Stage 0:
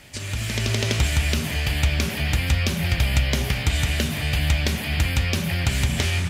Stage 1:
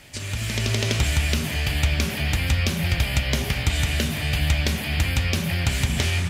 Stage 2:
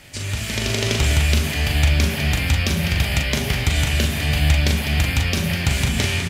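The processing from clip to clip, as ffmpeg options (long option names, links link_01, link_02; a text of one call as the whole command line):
ffmpeg -i in.wav -af "bandreject=frequency=64.45:width_type=h:width=4,bandreject=frequency=128.9:width_type=h:width=4,bandreject=frequency=193.35:width_type=h:width=4,bandreject=frequency=257.8:width_type=h:width=4,bandreject=frequency=322.25:width_type=h:width=4,bandreject=frequency=386.7:width_type=h:width=4,bandreject=frequency=451.15:width_type=h:width=4,bandreject=frequency=515.6:width_type=h:width=4,bandreject=frequency=580.05:width_type=h:width=4,bandreject=frequency=644.5:width_type=h:width=4,bandreject=frequency=708.95:width_type=h:width=4,bandreject=frequency=773.4:width_type=h:width=4,bandreject=frequency=837.85:width_type=h:width=4,bandreject=frequency=902.3:width_type=h:width=4,bandreject=frequency=966.75:width_type=h:width=4,bandreject=frequency=1031.2:width_type=h:width=4,bandreject=frequency=1095.65:width_type=h:width=4,bandreject=frequency=1160.1:width_type=h:width=4,bandreject=frequency=1224.55:width_type=h:width=4,bandreject=frequency=1289:width_type=h:width=4,bandreject=frequency=1353.45:width_type=h:width=4,bandreject=frequency=1417.9:width_type=h:width=4,bandreject=frequency=1482.35:width_type=h:width=4,bandreject=frequency=1546.8:width_type=h:width=4,bandreject=frequency=1611.25:width_type=h:width=4,bandreject=frequency=1675.7:width_type=h:width=4,bandreject=frequency=1740.15:width_type=h:width=4,bandreject=frequency=1804.6:width_type=h:width=4,bandreject=frequency=1869.05:width_type=h:width=4,bandreject=frequency=1933.5:width_type=h:width=4,bandreject=frequency=1997.95:width_type=h:width=4,bandreject=frequency=2062.4:width_type=h:width=4,bandreject=frequency=2126.85:width_type=h:width=4" out.wav
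ffmpeg -i in.wav -af "aecho=1:1:40.82|201.2:0.501|0.316,volume=2dB" out.wav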